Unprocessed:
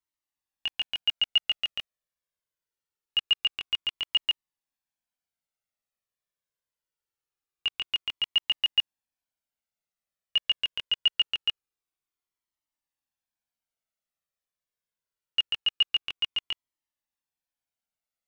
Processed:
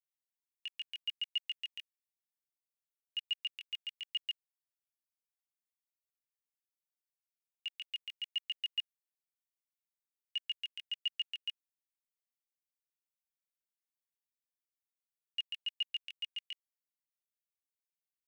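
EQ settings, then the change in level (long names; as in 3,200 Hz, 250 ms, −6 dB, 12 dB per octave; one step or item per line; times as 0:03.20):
four-pole ladder high-pass 1,700 Hz, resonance 50%
first difference
+1.0 dB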